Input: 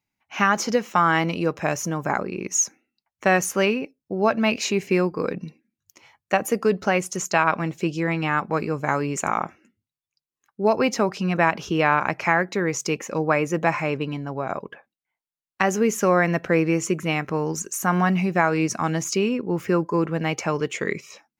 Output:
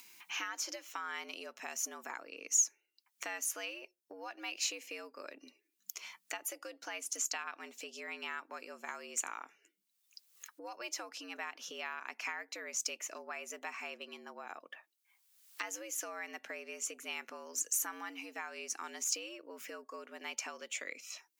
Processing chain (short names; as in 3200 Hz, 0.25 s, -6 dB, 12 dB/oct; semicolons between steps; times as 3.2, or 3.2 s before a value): upward compressor, threshold -22 dBFS; high shelf 5600 Hz -8 dB; compressor, threshold -22 dBFS, peak gain reduction 9 dB; frequency shift +95 Hz; pre-emphasis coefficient 0.97